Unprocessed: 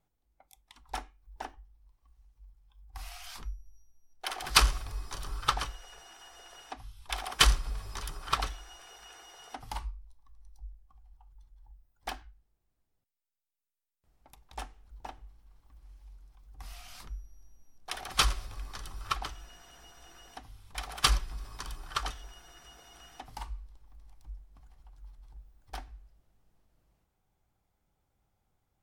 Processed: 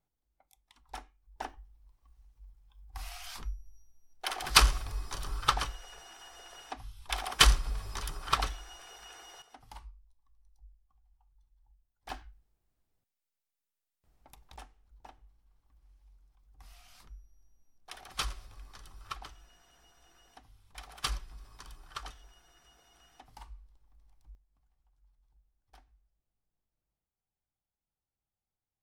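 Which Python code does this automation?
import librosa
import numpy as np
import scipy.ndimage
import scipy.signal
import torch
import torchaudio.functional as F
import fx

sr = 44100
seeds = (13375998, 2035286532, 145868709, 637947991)

y = fx.gain(x, sr, db=fx.steps((0.0, -6.5), (1.4, 1.0), (9.42, -11.0), (12.1, 0.5), (14.56, -9.0), (24.35, -18.0)))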